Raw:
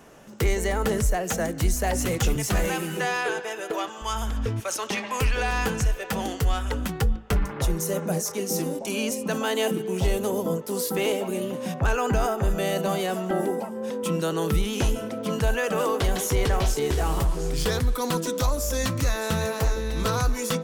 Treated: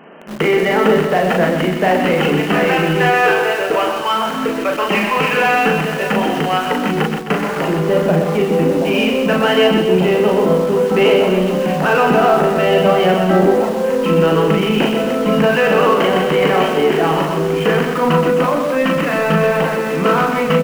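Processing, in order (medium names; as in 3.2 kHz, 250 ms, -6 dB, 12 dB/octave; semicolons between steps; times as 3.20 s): FFT band-pass 150–3200 Hz; doubling 38 ms -3.5 dB; in parallel at -11 dB: companded quantiser 2-bit; on the sum: loudspeakers at several distances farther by 43 m -7 dB, 89 m -12 dB; trim +9 dB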